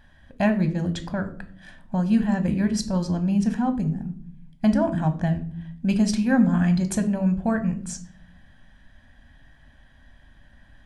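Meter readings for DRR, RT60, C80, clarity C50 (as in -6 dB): 8.0 dB, 0.55 s, 18.0 dB, 14.0 dB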